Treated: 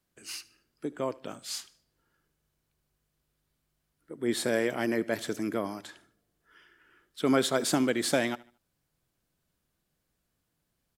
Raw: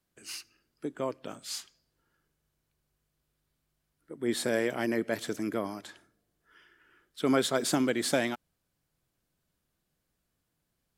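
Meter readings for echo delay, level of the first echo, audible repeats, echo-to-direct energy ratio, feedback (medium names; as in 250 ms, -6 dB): 75 ms, -21.5 dB, 2, -21.0 dB, 37%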